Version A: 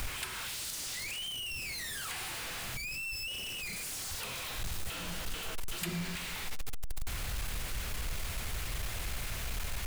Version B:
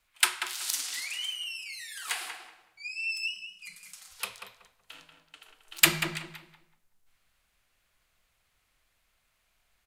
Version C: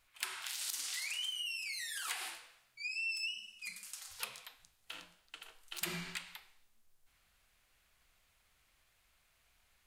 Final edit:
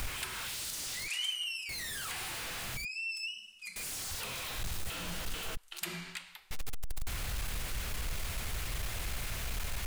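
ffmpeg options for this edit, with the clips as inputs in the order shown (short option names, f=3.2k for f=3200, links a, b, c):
-filter_complex "[2:a]asplit=2[a][b];[0:a]asplit=4[c][d][e][f];[c]atrim=end=1.082[g];[1:a]atrim=start=1.078:end=1.692[h];[d]atrim=start=1.688:end=2.852[i];[a]atrim=start=2.848:end=3.762[j];[e]atrim=start=3.758:end=5.572[k];[b]atrim=start=5.568:end=6.512[l];[f]atrim=start=6.508[m];[g][h]acrossfade=d=0.004:c1=hsin:c2=hsin[n];[n][i]acrossfade=d=0.004:c1=hsin:c2=hsin[o];[o][j]acrossfade=d=0.004:c1=hsin:c2=hsin[p];[p][k]acrossfade=d=0.004:c1=hsin:c2=hsin[q];[q][l]acrossfade=d=0.004:c1=hsin:c2=hsin[r];[r][m]acrossfade=d=0.004:c1=hsin:c2=hsin"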